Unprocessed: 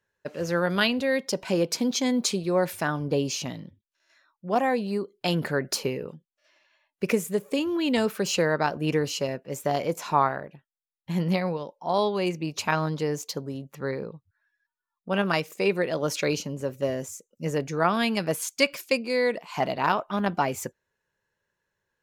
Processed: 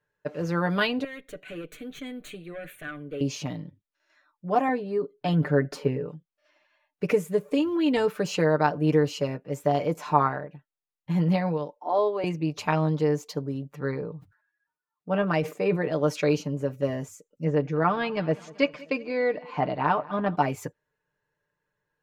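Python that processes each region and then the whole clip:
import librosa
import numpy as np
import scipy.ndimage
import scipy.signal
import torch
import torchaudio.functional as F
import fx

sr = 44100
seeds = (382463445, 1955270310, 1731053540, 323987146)

y = fx.chain(x, sr, fx.highpass(hz=760.0, slope=6),
    fx.tube_stage(drive_db=27.0, bias=0.2),
    fx.fixed_phaser(hz=2200.0, stages=4), at=(1.04, 3.21))
y = fx.chain(y, sr, fx.high_shelf(hz=3300.0, db=-10.5),
    fx.comb(ms=7.3, depth=0.47), at=(4.68, 6.06))
y = fx.chain(y, sr, fx.steep_highpass(hz=240.0, slope=48),
    fx.high_shelf(hz=2200.0, db=-10.0), at=(11.77, 12.24))
y = fx.chain(y, sr, fx.highpass(hz=43.0, slope=12),
    fx.high_shelf(hz=2300.0, db=-7.5),
    fx.sustainer(db_per_s=130.0), at=(14.01, 15.92))
y = fx.chain(y, sr, fx.air_absorb(metres=170.0),
    fx.echo_feedback(ms=191, feedback_pct=57, wet_db=-21.5), at=(17.44, 20.36))
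y = fx.high_shelf(y, sr, hz=3100.0, db=-11.5)
y = y + 0.65 * np.pad(y, (int(6.7 * sr / 1000.0), 0))[:len(y)]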